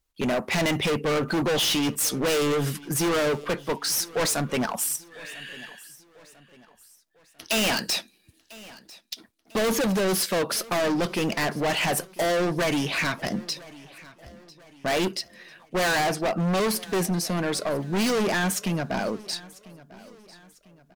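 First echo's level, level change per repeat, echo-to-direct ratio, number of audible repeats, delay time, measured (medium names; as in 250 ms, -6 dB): -21.0 dB, -7.5 dB, -20.0 dB, 2, 997 ms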